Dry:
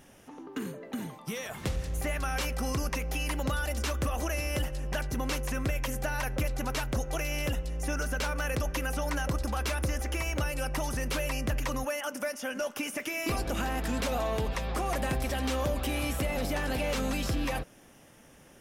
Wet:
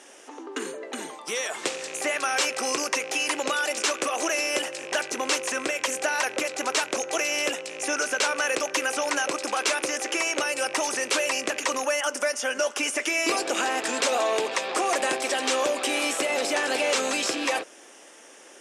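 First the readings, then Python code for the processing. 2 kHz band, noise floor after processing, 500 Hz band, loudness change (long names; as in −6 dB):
+9.0 dB, −49 dBFS, +7.0 dB, +6.5 dB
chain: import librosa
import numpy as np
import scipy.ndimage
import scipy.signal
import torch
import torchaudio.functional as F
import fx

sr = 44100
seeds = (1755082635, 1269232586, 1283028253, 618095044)

y = fx.rattle_buzz(x, sr, strikes_db=-32.0, level_db=-34.0)
y = scipy.signal.sosfilt(scipy.signal.cheby1(3, 1.0, [350.0, 8200.0], 'bandpass', fs=sr, output='sos'), y)
y = fx.high_shelf(y, sr, hz=5500.0, db=9.5)
y = y * librosa.db_to_amplitude(8.0)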